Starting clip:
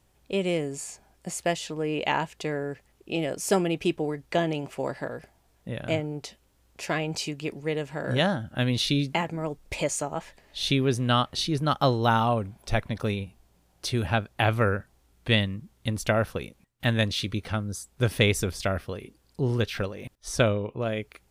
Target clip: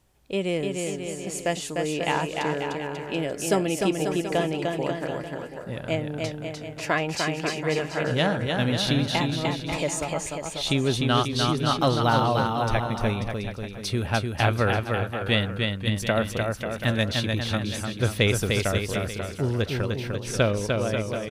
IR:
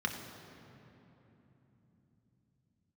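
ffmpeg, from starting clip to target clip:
-filter_complex "[0:a]asettb=1/sr,asplit=3[s0][s1][s2];[s0]atrim=end=6.134[s3];[s1]atrim=start=6.13:end=8.07,asetpts=PTS-STARTPTS,afade=t=in:d=0.004:c=qsin,afade=t=out:st=1.936:d=0.004:c=qsin,equalizer=f=1200:t=o:w=2:g=6.5[s4];[s2]atrim=start=8.066[s5];[s3][s4]acrossfade=d=0.004:c1=hsin:c2=qsin[s6];[s6][s5]acrossfade=d=0.004:c1=qsin:c2=hsin,aecho=1:1:300|540|732|885.6|1008:0.631|0.398|0.251|0.158|0.1"

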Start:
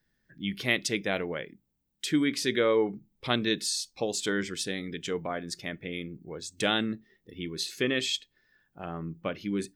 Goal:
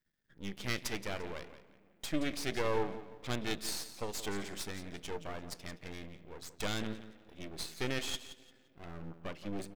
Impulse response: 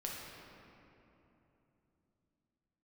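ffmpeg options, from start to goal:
-filter_complex "[0:a]aecho=1:1:173|346|519:0.224|0.056|0.014,asplit=2[s0][s1];[1:a]atrim=start_sample=2205[s2];[s1][s2]afir=irnorm=-1:irlink=0,volume=0.0891[s3];[s0][s3]amix=inputs=2:normalize=0,aeval=exprs='max(val(0),0)':c=same,volume=0.596"

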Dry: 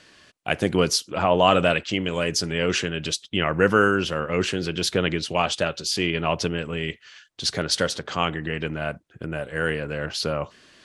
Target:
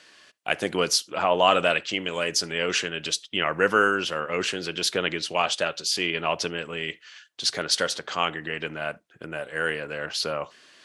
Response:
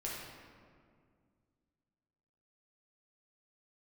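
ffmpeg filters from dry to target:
-filter_complex "[0:a]highpass=f=560:p=1,asplit=2[s0][s1];[1:a]atrim=start_sample=2205,afade=t=out:st=0.13:d=0.01,atrim=end_sample=6174[s2];[s1][s2]afir=irnorm=-1:irlink=0,volume=0.0891[s3];[s0][s3]amix=inputs=2:normalize=0"

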